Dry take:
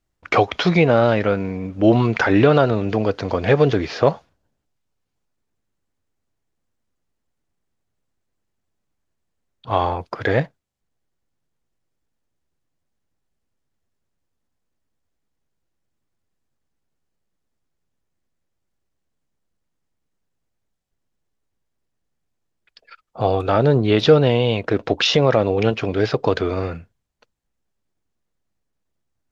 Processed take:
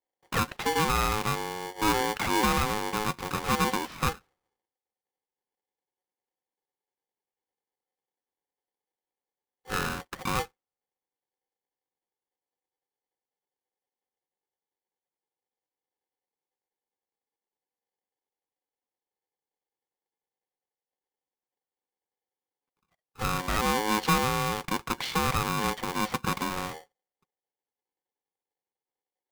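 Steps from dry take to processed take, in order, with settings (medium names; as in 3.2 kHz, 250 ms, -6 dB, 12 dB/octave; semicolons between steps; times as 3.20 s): treble shelf 2.5 kHz -11 dB; level-controlled noise filter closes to 350 Hz, open at -16.5 dBFS; saturation -9.5 dBFS, distortion -15 dB; high-pass 110 Hz 12 dB/octave; polarity switched at an audio rate 640 Hz; trim -8 dB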